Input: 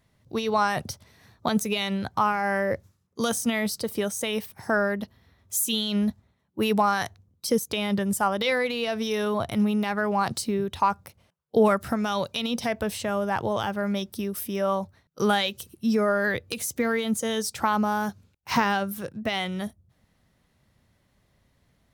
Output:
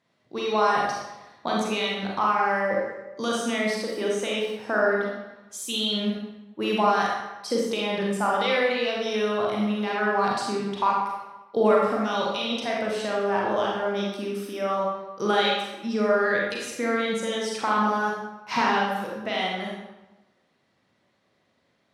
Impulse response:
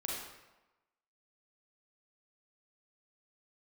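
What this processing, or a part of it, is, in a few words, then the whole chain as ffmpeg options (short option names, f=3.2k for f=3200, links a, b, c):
supermarket ceiling speaker: -filter_complex "[0:a]highpass=230,lowpass=5.9k[a];[1:a]atrim=start_sample=2205[b];[a][b]afir=irnorm=-1:irlink=0"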